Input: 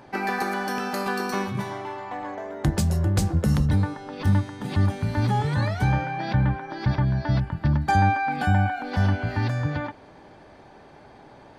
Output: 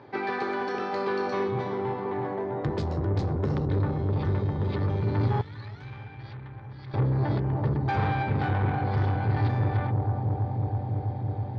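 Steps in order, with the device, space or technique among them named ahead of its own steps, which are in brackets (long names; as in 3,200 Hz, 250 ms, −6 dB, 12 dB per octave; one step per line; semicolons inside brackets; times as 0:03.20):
analogue delay pedal into a guitar amplifier (bucket-brigade delay 327 ms, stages 2,048, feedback 85%, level −4.5 dB; tube saturation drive 21 dB, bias 0.3; loudspeaker in its box 100–4,100 Hz, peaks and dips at 110 Hz +7 dB, 190 Hz −9 dB, 410 Hz +5 dB, 690 Hz −5 dB, 1,600 Hz −3 dB, 2,800 Hz −7 dB)
0:05.41–0:06.94: guitar amp tone stack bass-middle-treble 5-5-5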